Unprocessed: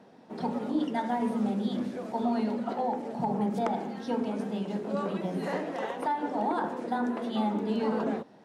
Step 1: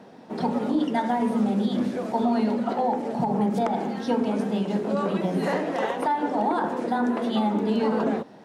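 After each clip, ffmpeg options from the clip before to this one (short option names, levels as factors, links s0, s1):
-af "alimiter=limit=0.075:level=0:latency=1:release=183,volume=2.37"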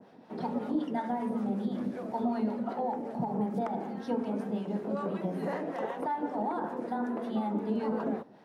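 -filter_complex "[0:a]equalizer=f=7500:t=o:w=0.95:g=-7,acrossover=split=730[s0][s1];[s0]aeval=exprs='val(0)*(1-0.5/2+0.5/2*cos(2*PI*5.3*n/s))':c=same[s2];[s1]aeval=exprs='val(0)*(1-0.5/2-0.5/2*cos(2*PI*5.3*n/s))':c=same[s3];[s2][s3]amix=inputs=2:normalize=0,adynamicequalizer=threshold=0.00282:dfrequency=3400:dqfactor=0.85:tfrequency=3400:tqfactor=0.85:attack=5:release=100:ratio=0.375:range=3.5:mode=cutabove:tftype=bell,volume=0.531"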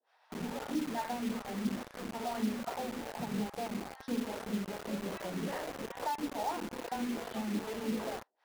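-filter_complex "[0:a]acrossover=split=420[s0][s1];[s0]aeval=exprs='val(0)*(1-1/2+1/2*cos(2*PI*2.4*n/s))':c=same[s2];[s1]aeval=exprs='val(0)*(1-1/2-1/2*cos(2*PI*2.4*n/s))':c=same[s3];[s2][s3]amix=inputs=2:normalize=0,acrossover=split=830[s4][s5];[s4]acrusher=bits=6:mix=0:aa=0.000001[s6];[s6][s5]amix=inputs=2:normalize=0"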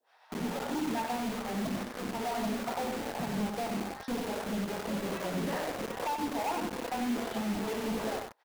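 -filter_complex "[0:a]aeval=exprs='0.0668*sin(PI/2*2.24*val(0)/0.0668)':c=same,asplit=2[s0][s1];[s1]aecho=0:1:94:0.501[s2];[s0][s2]amix=inputs=2:normalize=0,volume=0.531"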